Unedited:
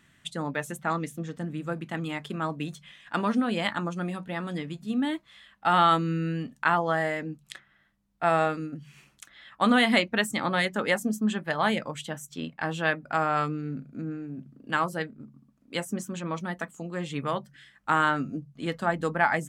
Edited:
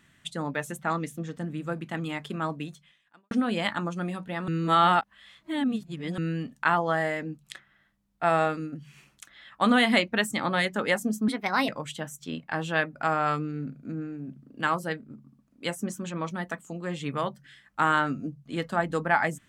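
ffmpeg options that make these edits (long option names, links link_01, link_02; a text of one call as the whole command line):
ffmpeg -i in.wav -filter_complex "[0:a]asplit=6[link_01][link_02][link_03][link_04][link_05][link_06];[link_01]atrim=end=3.31,asetpts=PTS-STARTPTS,afade=type=out:start_time=2.52:duration=0.79:curve=qua[link_07];[link_02]atrim=start=3.31:end=4.482,asetpts=PTS-STARTPTS,afade=type=in:duration=0.004:curve=hsin[link_08];[link_03]atrim=start=4.478:end=6.182,asetpts=PTS-STARTPTS,areverse[link_09];[link_04]atrim=start=6.178:end=11.284[link_10];[link_05]atrim=start=11.28:end=11.78,asetpts=PTS-STARTPTS,asetrate=54684,aresample=44100,atrim=end_sample=17782,asetpts=PTS-STARTPTS[link_11];[link_06]atrim=start=11.776[link_12];[link_07][link_08]concat=n=2:v=0:a=1[link_13];[link_13][link_09]acrossfade=duration=0.004:curve1=hsin:curve2=hsin[link_14];[link_14][link_10]acrossfade=duration=0.004:curve1=hsin:curve2=hsin[link_15];[link_15][link_11]acrossfade=duration=0.004:curve1=hsin:curve2=hsin[link_16];[link_16][link_12]acrossfade=duration=0.004:curve1=hsin:curve2=hsin" out.wav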